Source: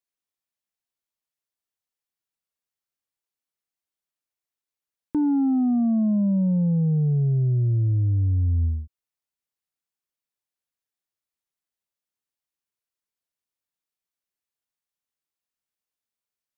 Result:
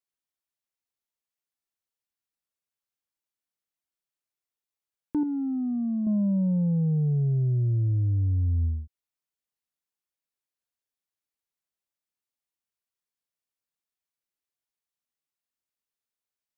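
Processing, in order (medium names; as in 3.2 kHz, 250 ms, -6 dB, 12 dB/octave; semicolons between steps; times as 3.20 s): 5.23–6.07 s: peaking EQ 740 Hz -12 dB 2.4 oct; trim -3 dB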